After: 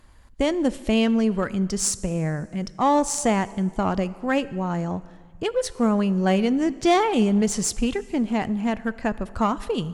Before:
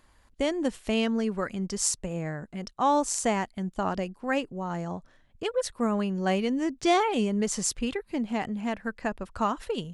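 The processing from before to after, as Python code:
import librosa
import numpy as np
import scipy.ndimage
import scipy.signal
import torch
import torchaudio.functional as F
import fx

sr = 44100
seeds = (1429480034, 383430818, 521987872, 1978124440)

p1 = fx.low_shelf(x, sr, hz=230.0, db=7.5)
p2 = fx.rev_plate(p1, sr, seeds[0], rt60_s=1.9, hf_ratio=0.85, predelay_ms=0, drr_db=17.0)
p3 = fx.clip_asym(p2, sr, top_db=-30.0, bottom_db=-15.0)
y = p2 + F.gain(torch.from_numpy(p3), -5.0).numpy()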